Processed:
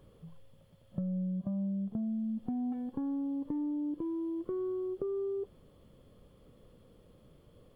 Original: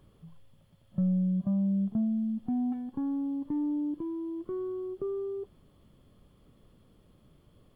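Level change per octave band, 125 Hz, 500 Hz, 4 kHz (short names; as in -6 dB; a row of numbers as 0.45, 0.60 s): -6.5 dB, -0.5 dB, n/a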